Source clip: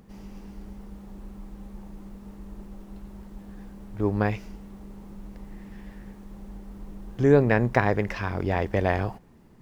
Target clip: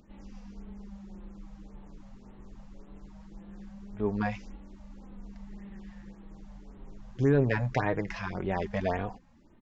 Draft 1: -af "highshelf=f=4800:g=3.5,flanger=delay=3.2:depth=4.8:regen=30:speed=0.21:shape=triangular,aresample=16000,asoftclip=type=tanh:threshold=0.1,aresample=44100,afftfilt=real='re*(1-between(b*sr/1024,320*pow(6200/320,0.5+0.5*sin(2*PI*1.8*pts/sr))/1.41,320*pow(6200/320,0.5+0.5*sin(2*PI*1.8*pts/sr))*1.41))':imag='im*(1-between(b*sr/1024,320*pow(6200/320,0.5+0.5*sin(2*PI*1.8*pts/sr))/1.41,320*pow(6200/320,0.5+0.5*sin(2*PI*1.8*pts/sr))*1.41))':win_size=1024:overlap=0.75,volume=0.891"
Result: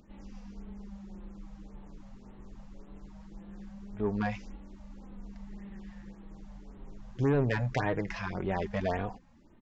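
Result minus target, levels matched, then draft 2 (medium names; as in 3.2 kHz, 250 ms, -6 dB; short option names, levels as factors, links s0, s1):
saturation: distortion +9 dB
-af "highshelf=f=4800:g=3.5,flanger=delay=3.2:depth=4.8:regen=30:speed=0.21:shape=triangular,aresample=16000,asoftclip=type=tanh:threshold=0.237,aresample=44100,afftfilt=real='re*(1-between(b*sr/1024,320*pow(6200/320,0.5+0.5*sin(2*PI*1.8*pts/sr))/1.41,320*pow(6200/320,0.5+0.5*sin(2*PI*1.8*pts/sr))*1.41))':imag='im*(1-between(b*sr/1024,320*pow(6200/320,0.5+0.5*sin(2*PI*1.8*pts/sr))/1.41,320*pow(6200/320,0.5+0.5*sin(2*PI*1.8*pts/sr))*1.41))':win_size=1024:overlap=0.75,volume=0.891"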